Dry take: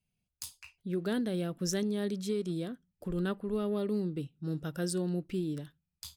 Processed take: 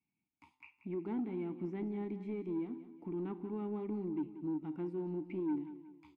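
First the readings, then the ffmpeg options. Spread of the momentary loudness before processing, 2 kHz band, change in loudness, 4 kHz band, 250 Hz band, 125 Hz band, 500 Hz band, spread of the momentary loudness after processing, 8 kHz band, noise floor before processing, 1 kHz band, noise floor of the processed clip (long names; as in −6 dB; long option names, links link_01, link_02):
12 LU, −13.0 dB, −5.5 dB, below −25 dB, −4.0 dB, −9.5 dB, −6.5 dB, 8 LU, below −35 dB, below −85 dBFS, −3.0 dB, below −85 dBFS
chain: -filter_complex "[0:a]acrossover=split=2700[link_01][link_02];[link_02]acompressor=threshold=-52dB:ratio=4:attack=1:release=60[link_03];[link_01][link_03]amix=inputs=2:normalize=0,asplit=3[link_04][link_05][link_06];[link_04]bandpass=frequency=300:width_type=q:width=8,volume=0dB[link_07];[link_05]bandpass=frequency=870:width_type=q:width=8,volume=-6dB[link_08];[link_06]bandpass=frequency=2240:width_type=q:width=8,volume=-9dB[link_09];[link_07][link_08][link_09]amix=inputs=3:normalize=0,highshelf=frequency=2800:width_type=q:width=1.5:gain=-8.5,asplit=2[link_10][link_11];[link_11]acompressor=threshold=-51dB:ratio=6,volume=0.5dB[link_12];[link_10][link_12]amix=inputs=2:normalize=0,bandreject=frequency=128.7:width_type=h:width=4,bandreject=frequency=257.4:width_type=h:width=4,bandreject=frequency=386.1:width_type=h:width=4,bandreject=frequency=514.8:width_type=h:width=4,bandreject=frequency=643.5:width_type=h:width=4,bandreject=frequency=772.2:width_type=h:width=4,bandreject=frequency=900.9:width_type=h:width=4,bandreject=frequency=1029.6:width_type=h:width=4,bandreject=frequency=1158.3:width_type=h:width=4,bandreject=frequency=1287:width_type=h:width=4,bandreject=frequency=1415.7:width_type=h:width=4,bandreject=frequency=1544.4:width_type=h:width=4,bandreject=frequency=1673.1:width_type=h:width=4,bandreject=frequency=1801.8:width_type=h:width=4,bandreject=frequency=1930.5:width_type=h:width=4,bandreject=frequency=2059.2:width_type=h:width=4,bandreject=frequency=2187.9:width_type=h:width=4,bandreject=frequency=2316.6:width_type=h:width=4,bandreject=frequency=2445.3:width_type=h:width=4,bandreject=frequency=2574:width_type=h:width=4,bandreject=frequency=2702.7:width_type=h:width=4,bandreject=frequency=2831.4:width_type=h:width=4,bandreject=frequency=2960.1:width_type=h:width=4,bandreject=frequency=3088.8:width_type=h:width=4,bandreject=frequency=3217.5:width_type=h:width=4,bandreject=frequency=3346.2:width_type=h:width=4,bandreject=frequency=3474.9:width_type=h:width=4,bandreject=frequency=3603.6:width_type=h:width=4,bandreject=frequency=3732.3:width_type=h:width=4,bandreject=frequency=3861:width_type=h:width=4,bandreject=frequency=3989.7:width_type=h:width=4,bandreject=frequency=4118.4:width_type=h:width=4,bandreject=frequency=4247.1:width_type=h:width=4,asoftclip=type=tanh:threshold=-35.5dB,asplit=2[link_13][link_14];[link_14]aecho=0:1:183|366|549|732:0.224|0.0963|0.0414|0.0178[link_15];[link_13][link_15]amix=inputs=2:normalize=0,volume=5.5dB"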